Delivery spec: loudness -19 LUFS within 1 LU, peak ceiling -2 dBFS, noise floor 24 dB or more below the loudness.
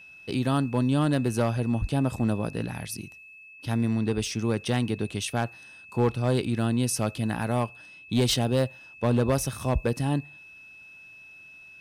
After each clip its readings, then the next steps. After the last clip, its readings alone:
clipped samples 0.6%; clipping level -16.5 dBFS; steady tone 2.6 kHz; tone level -46 dBFS; loudness -27.0 LUFS; peak level -16.5 dBFS; loudness target -19.0 LUFS
-> clip repair -16.5 dBFS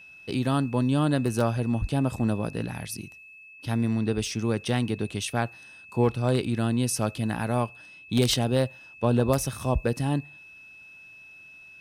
clipped samples 0.0%; steady tone 2.6 kHz; tone level -46 dBFS
-> band-stop 2.6 kHz, Q 30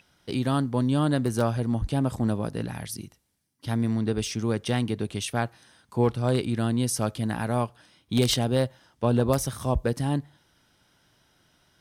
steady tone not found; loudness -27.0 LUFS; peak level -7.5 dBFS; loudness target -19.0 LUFS
-> trim +8 dB; peak limiter -2 dBFS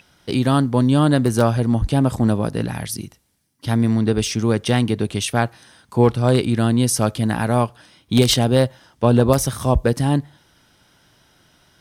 loudness -19.0 LUFS; peak level -2.0 dBFS; noise floor -59 dBFS

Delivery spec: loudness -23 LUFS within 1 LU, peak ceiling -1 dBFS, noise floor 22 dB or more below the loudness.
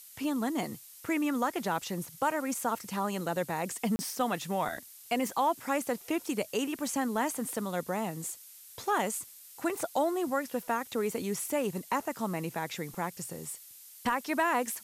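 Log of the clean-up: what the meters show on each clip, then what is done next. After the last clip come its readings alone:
dropouts 1; longest dropout 30 ms; noise floor -52 dBFS; noise floor target -55 dBFS; loudness -32.5 LUFS; peak level -17.0 dBFS; loudness target -23.0 LUFS
-> interpolate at 3.96 s, 30 ms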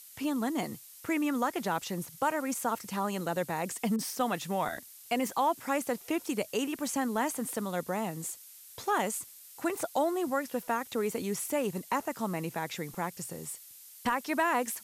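dropouts 0; noise floor -52 dBFS; noise floor target -55 dBFS
-> noise print and reduce 6 dB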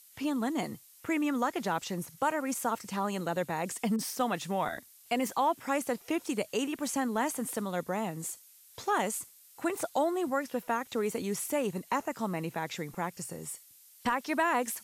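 noise floor -58 dBFS; loudness -32.5 LUFS; peak level -17.5 dBFS; loudness target -23.0 LUFS
-> trim +9.5 dB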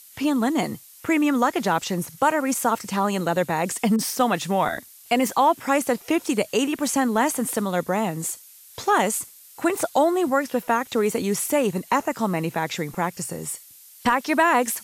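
loudness -23.0 LUFS; peak level -8.0 dBFS; noise floor -48 dBFS

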